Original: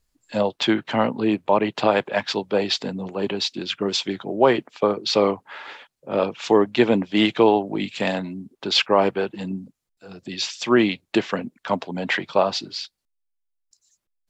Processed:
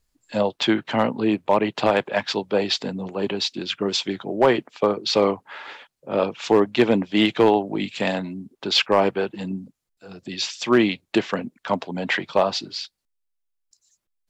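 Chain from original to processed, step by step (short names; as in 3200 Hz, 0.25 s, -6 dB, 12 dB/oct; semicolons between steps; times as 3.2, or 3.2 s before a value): overloaded stage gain 8 dB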